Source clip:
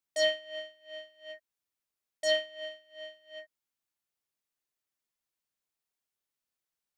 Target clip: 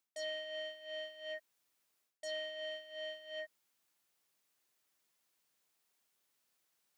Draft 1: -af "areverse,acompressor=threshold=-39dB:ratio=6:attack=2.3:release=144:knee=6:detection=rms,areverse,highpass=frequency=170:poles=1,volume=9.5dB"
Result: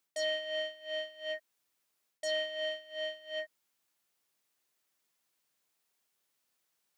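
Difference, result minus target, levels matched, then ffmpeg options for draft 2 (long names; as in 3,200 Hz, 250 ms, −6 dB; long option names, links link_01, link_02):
downward compressor: peak gain reduction −8 dB
-af "areverse,acompressor=threshold=-48.5dB:ratio=6:attack=2.3:release=144:knee=6:detection=rms,areverse,highpass=frequency=170:poles=1,volume=9.5dB"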